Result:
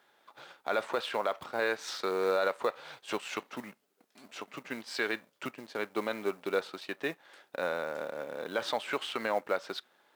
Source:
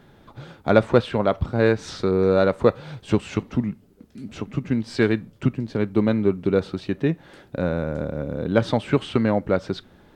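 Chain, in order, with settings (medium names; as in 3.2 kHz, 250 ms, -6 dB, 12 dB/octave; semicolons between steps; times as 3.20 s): companding laws mixed up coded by A; high-pass 740 Hz 12 dB/octave; peak limiter -18.5 dBFS, peak gain reduction 11 dB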